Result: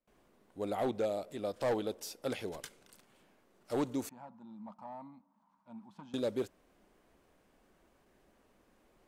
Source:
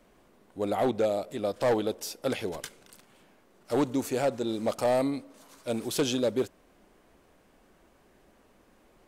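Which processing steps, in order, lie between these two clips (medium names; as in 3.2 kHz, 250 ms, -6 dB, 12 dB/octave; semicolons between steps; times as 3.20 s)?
gate with hold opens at -52 dBFS; 4.09–6.14 s: two resonant band-passes 430 Hz, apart 2.2 oct; trim -7 dB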